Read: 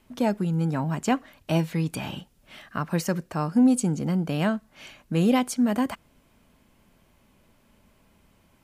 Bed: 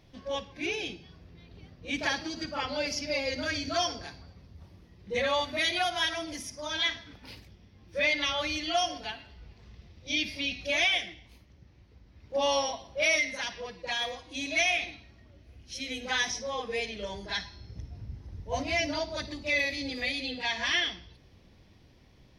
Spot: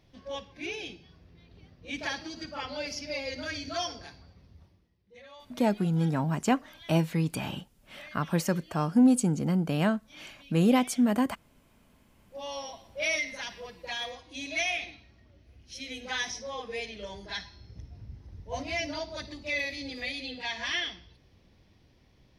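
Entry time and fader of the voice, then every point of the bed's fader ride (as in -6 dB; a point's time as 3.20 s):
5.40 s, -1.5 dB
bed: 4.56 s -4 dB
5.08 s -23 dB
11.65 s -23 dB
13.07 s -3.5 dB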